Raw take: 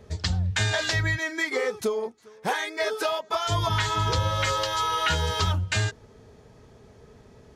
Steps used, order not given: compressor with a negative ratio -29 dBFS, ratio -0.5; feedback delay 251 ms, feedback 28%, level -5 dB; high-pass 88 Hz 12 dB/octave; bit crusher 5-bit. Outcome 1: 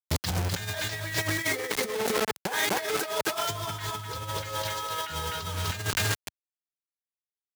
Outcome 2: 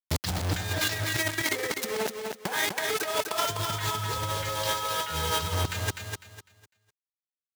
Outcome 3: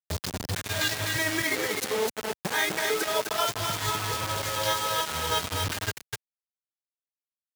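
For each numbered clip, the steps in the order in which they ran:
feedback delay > bit crusher > high-pass > compressor with a negative ratio; bit crusher > high-pass > compressor with a negative ratio > feedback delay; compressor with a negative ratio > feedback delay > bit crusher > high-pass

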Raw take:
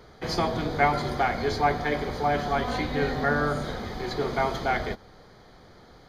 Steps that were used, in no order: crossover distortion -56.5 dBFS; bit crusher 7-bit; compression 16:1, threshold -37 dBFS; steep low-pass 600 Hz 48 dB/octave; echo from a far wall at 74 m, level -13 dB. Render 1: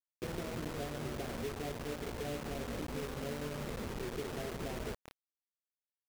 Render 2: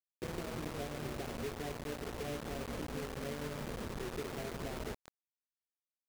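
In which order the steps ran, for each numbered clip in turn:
crossover distortion > steep low-pass > compression > echo from a far wall > bit crusher; steep low-pass > compression > echo from a far wall > crossover distortion > bit crusher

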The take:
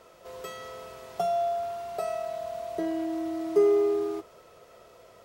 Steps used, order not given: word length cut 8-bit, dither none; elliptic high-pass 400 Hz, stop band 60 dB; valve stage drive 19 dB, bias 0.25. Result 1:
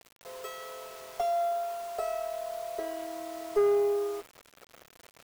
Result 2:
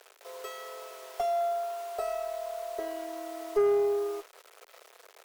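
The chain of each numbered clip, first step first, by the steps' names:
elliptic high-pass > valve stage > word length cut; word length cut > elliptic high-pass > valve stage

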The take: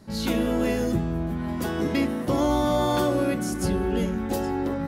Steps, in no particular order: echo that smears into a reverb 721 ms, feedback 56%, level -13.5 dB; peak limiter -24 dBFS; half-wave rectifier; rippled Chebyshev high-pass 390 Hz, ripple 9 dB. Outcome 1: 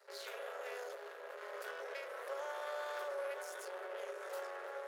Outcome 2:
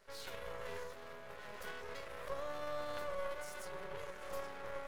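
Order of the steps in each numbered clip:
echo that smears into a reverb > peak limiter > half-wave rectifier > rippled Chebyshev high-pass; echo that smears into a reverb > peak limiter > rippled Chebyshev high-pass > half-wave rectifier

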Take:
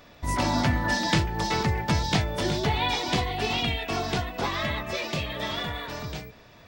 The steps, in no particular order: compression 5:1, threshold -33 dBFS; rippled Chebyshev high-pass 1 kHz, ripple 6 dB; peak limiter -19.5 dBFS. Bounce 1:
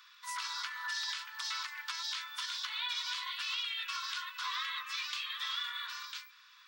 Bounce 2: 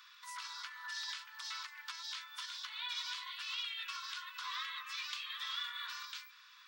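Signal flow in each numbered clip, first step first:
peak limiter > rippled Chebyshev high-pass > compression; peak limiter > compression > rippled Chebyshev high-pass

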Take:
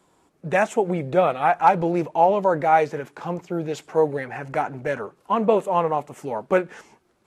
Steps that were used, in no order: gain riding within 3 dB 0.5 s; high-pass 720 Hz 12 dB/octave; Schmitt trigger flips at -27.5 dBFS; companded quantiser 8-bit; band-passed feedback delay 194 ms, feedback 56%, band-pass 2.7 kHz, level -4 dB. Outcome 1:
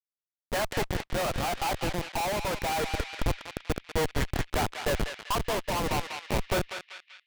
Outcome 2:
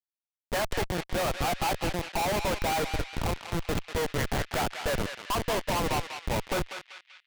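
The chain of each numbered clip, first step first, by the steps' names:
high-pass > Schmitt trigger > companded quantiser > band-passed feedback delay > gain riding; companded quantiser > high-pass > gain riding > Schmitt trigger > band-passed feedback delay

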